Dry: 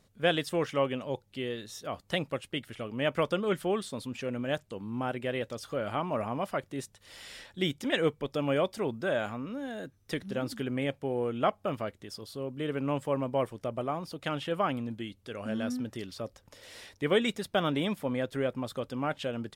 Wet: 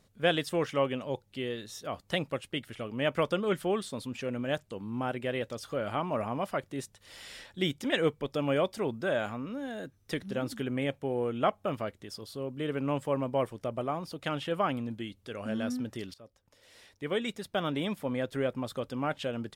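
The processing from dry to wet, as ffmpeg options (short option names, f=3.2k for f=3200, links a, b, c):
-filter_complex "[0:a]asettb=1/sr,asplit=3[a][b][c];[a]atrim=end=10.334[d];[b]atrim=start=10.33:end=11.7,asetpts=PTS-STARTPTS,afade=t=in:d=0.004:c=qsin,afade=t=out:st=1.366:d=0.004:c=qsin,bandreject=f=4.8k:w=12[e];[c]atrim=start=11.696[f];[d][e]acrossfade=d=0.004:c1=hsin:c2=qsin[g];[g][f]acrossfade=d=0.004:c1=qsin:c2=hsin,asplit=2[h][i];[h]atrim=end=16.14,asetpts=PTS-STARTPTS,afade=t=out:st=16.136:d=0.004:c=hsin:silence=0.141254[j];[i]atrim=start=16.14,asetpts=PTS-STARTPTS,afade=t=in:d=2.25:silence=0.141254[k];[j][k]concat=n=2:v=0:a=1"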